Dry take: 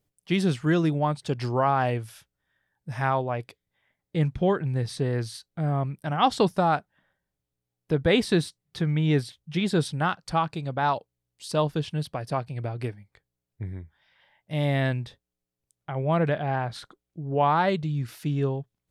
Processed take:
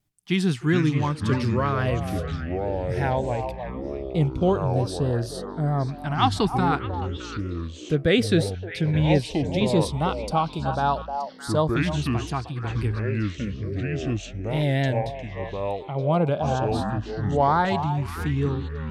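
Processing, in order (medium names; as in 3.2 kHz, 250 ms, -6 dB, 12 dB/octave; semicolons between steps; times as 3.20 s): vibrato 4.4 Hz 57 cents; repeats whose band climbs or falls 308 ms, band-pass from 690 Hz, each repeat 1.4 oct, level -5 dB; ever faster or slower copies 297 ms, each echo -6 st, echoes 3, each echo -6 dB; LFO notch saw up 0.17 Hz 480–2700 Hz; trim +2 dB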